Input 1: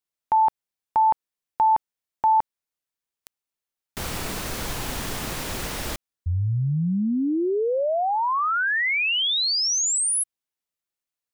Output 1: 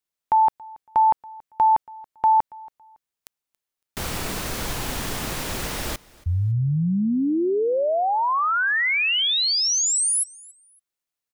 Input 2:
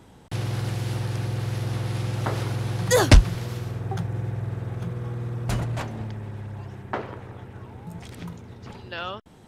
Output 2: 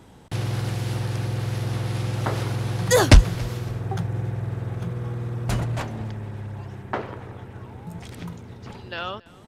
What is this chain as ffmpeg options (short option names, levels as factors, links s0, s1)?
-af "aecho=1:1:279|558:0.0668|0.018,volume=1.19"